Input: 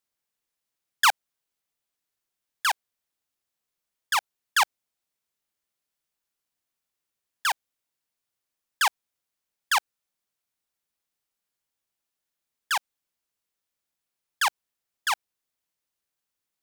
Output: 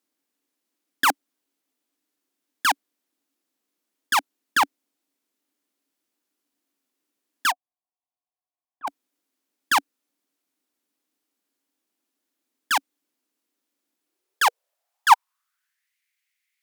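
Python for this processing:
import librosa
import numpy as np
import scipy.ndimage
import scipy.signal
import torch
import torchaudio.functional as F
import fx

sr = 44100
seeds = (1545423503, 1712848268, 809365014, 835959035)

y = fx.low_shelf(x, sr, hz=330.0, db=3.5)
y = fx.cheby_harmonics(y, sr, harmonics=(5, 6, 8), levels_db=(-18, -7, -14), full_scale_db=-10.0)
y = fx.formant_cascade(y, sr, vowel='a', at=(7.5, 8.87), fade=0.02)
y = fx.filter_sweep_highpass(y, sr, from_hz=280.0, to_hz=2100.0, start_s=13.96, end_s=15.95, q=5.8)
y = y * 10.0 ** (-1.0 / 20.0)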